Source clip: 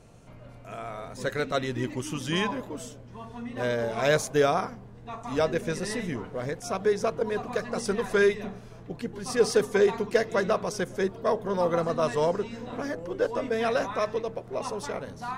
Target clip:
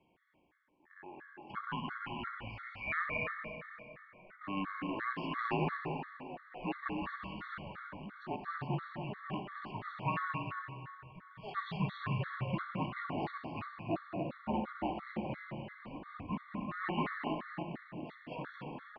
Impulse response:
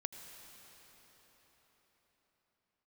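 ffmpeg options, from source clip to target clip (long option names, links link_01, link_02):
-filter_complex "[0:a]agate=range=-16dB:threshold=-37dB:ratio=16:detection=peak,tiltshelf=frequency=1100:gain=-8.5,bandreject=frequency=50:width_type=h:width=6,bandreject=frequency=100:width_type=h:width=6,bandreject=frequency=150:width_type=h:width=6,bandreject=frequency=200:width_type=h:width=6,bandreject=frequency=250:width_type=h:width=6,bandreject=frequency=300:width_type=h:width=6,bandreject=frequency=350:width_type=h:width=6,bandreject=frequency=400:width_type=h:width=6,areverse,acompressor=mode=upward:threshold=-48dB:ratio=2.5,areverse,asetrate=35721,aresample=44100,tremolo=f=1.3:d=0.48,aecho=1:1:215.7|282.8:0.501|0.501[link_01];[1:a]atrim=start_sample=2205,asetrate=83790,aresample=44100[link_02];[link_01][link_02]afir=irnorm=-1:irlink=0,highpass=frequency=280:width_type=q:width=0.5412,highpass=frequency=280:width_type=q:width=1.307,lowpass=frequency=2900:width_type=q:width=0.5176,lowpass=frequency=2900:width_type=q:width=0.7071,lowpass=frequency=2900:width_type=q:width=1.932,afreqshift=-200,afftfilt=real='re*gt(sin(2*PI*2.9*pts/sr)*(1-2*mod(floor(b*sr/1024/1100),2)),0)':imag='im*gt(sin(2*PI*2.9*pts/sr)*(1-2*mod(floor(b*sr/1024/1100),2)),0)':win_size=1024:overlap=0.75,volume=3dB"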